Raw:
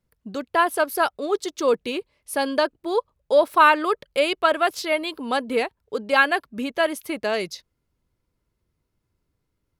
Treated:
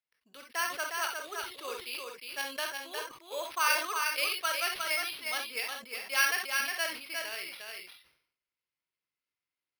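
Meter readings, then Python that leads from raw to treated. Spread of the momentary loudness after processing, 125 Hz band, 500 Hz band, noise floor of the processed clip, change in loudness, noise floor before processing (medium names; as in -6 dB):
12 LU, no reading, -19.5 dB, under -85 dBFS, -10.0 dB, -77 dBFS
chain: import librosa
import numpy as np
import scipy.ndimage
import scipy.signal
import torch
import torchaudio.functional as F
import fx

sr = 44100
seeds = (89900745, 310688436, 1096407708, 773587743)

p1 = fx.level_steps(x, sr, step_db=21)
p2 = x + F.gain(torch.from_numpy(p1), -2.0).numpy()
p3 = fx.bandpass_q(p2, sr, hz=2600.0, q=1.9)
p4 = p3 + 10.0 ** (-4.5 / 20.0) * np.pad(p3, (int(358 * sr / 1000.0), 0))[:len(p3)]
p5 = fx.rev_gated(p4, sr, seeds[0], gate_ms=80, shape='rising', drr_db=4.5)
p6 = np.repeat(p5[::6], 6)[:len(p5)]
p7 = fx.sustainer(p6, sr, db_per_s=95.0)
y = F.gain(torch.from_numpy(p7), -7.0).numpy()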